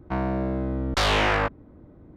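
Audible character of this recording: noise floor -51 dBFS; spectral tilt -3.5 dB/oct

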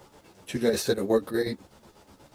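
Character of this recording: chopped level 8.2 Hz, depth 60%, duty 60%; a quantiser's noise floor 12-bit, dither none; a shimmering, thickened sound

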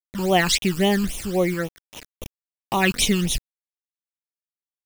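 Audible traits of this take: a quantiser's noise floor 6-bit, dither none; random-step tremolo 2.6 Hz, depth 55%; phasing stages 12, 3.7 Hz, lowest notch 620–1600 Hz

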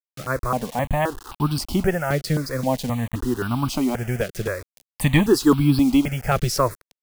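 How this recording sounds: a quantiser's noise floor 6-bit, dither none; notches that jump at a steady rate 3.8 Hz 260–1900 Hz

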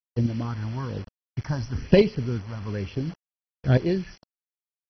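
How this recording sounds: phasing stages 4, 1.1 Hz, lowest notch 420–1300 Hz; chopped level 0.57 Hz, depth 65%, duty 15%; a quantiser's noise floor 8-bit, dither none; MP2

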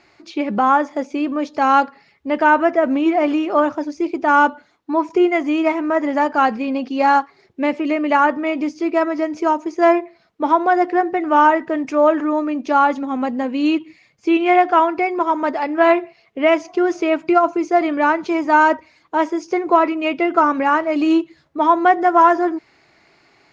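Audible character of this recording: noise floor -56 dBFS; spectral tilt +2.5 dB/oct

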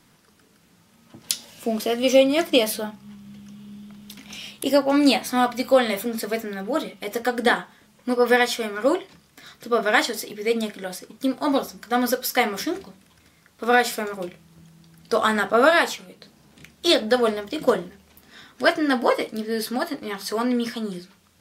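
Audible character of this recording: noise floor -58 dBFS; spectral tilt -3.0 dB/oct

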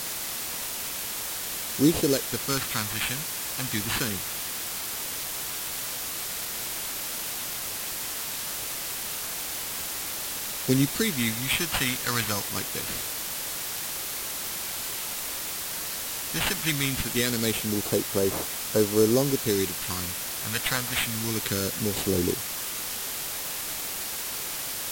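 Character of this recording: aliases and images of a low sample rate 5700 Hz, jitter 0%; phasing stages 2, 0.23 Hz, lowest notch 360–2600 Hz; a quantiser's noise floor 6-bit, dither triangular; Vorbis

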